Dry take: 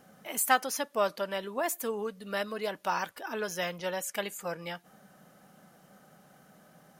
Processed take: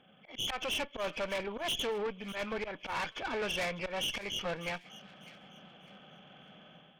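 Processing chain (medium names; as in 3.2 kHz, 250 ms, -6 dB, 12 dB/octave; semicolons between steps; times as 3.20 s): knee-point frequency compression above 2.1 kHz 4:1; level rider gain up to 8 dB; slow attack 134 ms; valve stage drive 29 dB, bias 0.75; on a send: feedback echo behind a high-pass 599 ms, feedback 30%, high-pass 2 kHz, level -15 dB; on the sum: trim -1.5 dB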